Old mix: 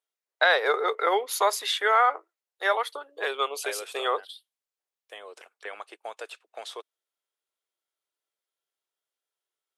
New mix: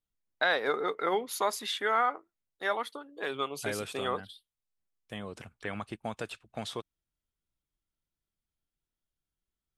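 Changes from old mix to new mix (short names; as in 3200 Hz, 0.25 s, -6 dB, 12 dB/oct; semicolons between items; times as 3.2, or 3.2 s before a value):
first voice -6.5 dB; master: remove steep high-pass 410 Hz 36 dB/oct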